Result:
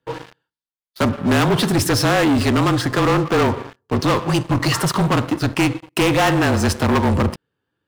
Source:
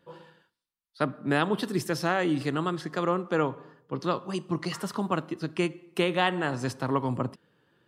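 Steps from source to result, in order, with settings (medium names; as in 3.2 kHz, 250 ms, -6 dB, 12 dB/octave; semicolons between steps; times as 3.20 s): frequency shift -31 Hz; waveshaping leveller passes 5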